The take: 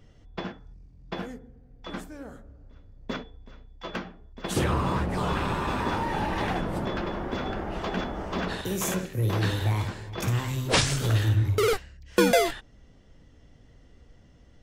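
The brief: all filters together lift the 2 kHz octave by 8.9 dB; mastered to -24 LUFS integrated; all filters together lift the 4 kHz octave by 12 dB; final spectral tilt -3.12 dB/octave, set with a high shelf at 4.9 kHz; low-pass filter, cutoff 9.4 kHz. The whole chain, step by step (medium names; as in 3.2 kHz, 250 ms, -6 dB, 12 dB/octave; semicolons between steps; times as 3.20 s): low-pass 9.4 kHz; peaking EQ 2 kHz +7.5 dB; peaking EQ 4 kHz +9 dB; treble shelf 4.9 kHz +8 dB; trim -1 dB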